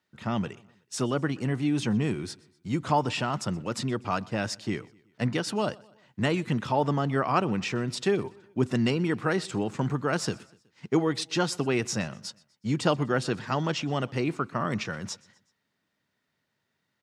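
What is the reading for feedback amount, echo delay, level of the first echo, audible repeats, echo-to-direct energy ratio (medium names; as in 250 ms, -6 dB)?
51%, 124 ms, -24.0 dB, 2, -23.0 dB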